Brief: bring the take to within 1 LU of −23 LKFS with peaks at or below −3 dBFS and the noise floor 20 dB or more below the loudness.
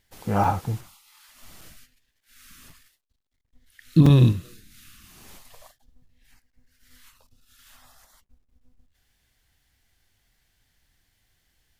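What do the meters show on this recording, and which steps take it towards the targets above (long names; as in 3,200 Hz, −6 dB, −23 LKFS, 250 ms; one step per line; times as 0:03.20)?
number of dropouts 4; longest dropout 3.9 ms; integrated loudness −20.5 LKFS; sample peak −5.5 dBFS; target loudness −23.0 LKFS
→ repair the gap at 0:00.44/0:01.61/0:02.70/0:04.06, 3.9 ms
level −2.5 dB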